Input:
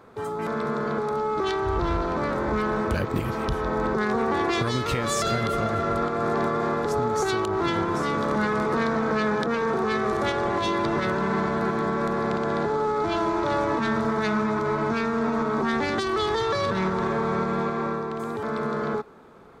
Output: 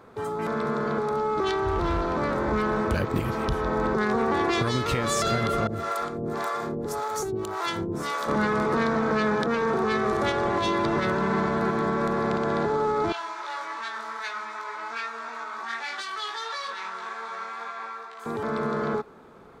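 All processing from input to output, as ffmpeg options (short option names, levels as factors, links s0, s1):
-filter_complex "[0:a]asettb=1/sr,asplit=3[s0][s1][s2];[s0]atrim=end=1.694[s3];[s1]atrim=start=1.69:end=2.17,asetpts=PTS-STARTPTS,afade=t=in:d=0.004:c=qsin,afade=t=out:st=0.476:d=0.004:c=qsin,bandreject=f=60:t=h:w=6,bandreject=f=120:t=h:w=6,bandreject=f=180:t=h:w=6,bandreject=f=240:t=h:w=6,bandreject=f=300:t=h:w=6,bandreject=f=360:t=h:w=6,bandreject=f=420:t=h:w=6,asoftclip=type=hard:threshold=0.112[s4];[s2]atrim=start=2.166[s5];[s3][s4]acrossfade=d=0.004:c1=hsin:c2=qsin[s6];[s6][s5]acrossfade=d=0.004:c1=qsin:c2=hsin,asettb=1/sr,asplit=3[s7][s8][s9];[s7]atrim=end=5.674[s10];[s8]atrim=start=5.67:end=8.28,asetpts=PTS-STARTPTS,afade=t=in:d=0.004:c=qsin,afade=t=out:st=2.606:d=0.004:c=qsin,aemphasis=mode=production:type=50fm,acrossover=split=510[s11][s12];[s11]aeval=exprs='val(0)*(1-1/2+1/2*cos(2*PI*1.8*n/s))':c=same[s13];[s12]aeval=exprs='val(0)*(1-1/2-1/2*cos(2*PI*1.8*n/s))':c=same[s14];[s13][s14]amix=inputs=2:normalize=0[s15];[s9]atrim=start=8.276[s16];[s10][s15]acrossfade=d=0.004:c1=hsin:c2=qsin[s17];[s17][s16]acrossfade=d=0.004:c1=qsin:c2=hsin,asettb=1/sr,asplit=3[s18][s19][s20];[s18]atrim=end=13.124[s21];[s19]atrim=start=13.12:end=18.26,asetpts=PTS-STARTPTS,afade=t=in:d=0.004:c=qsin,afade=t=out:st=5.136:d=0.004:c=qsin,flanger=delay=16:depth=2.6:speed=2.6,highpass=1200,asplit=2[s22][s23];[s23]adelay=22,volume=0.501[s24];[s22][s24]amix=inputs=2:normalize=0,atrim=end_sample=226674[s25];[s20]atrim=start=18.256[s26];[s21][s25]acrossfade=d=0.004:c1=hsin:c2=qsin[s27];[s27][s26]acrossfade=d=0.004:c1=qsin:c2=hsin"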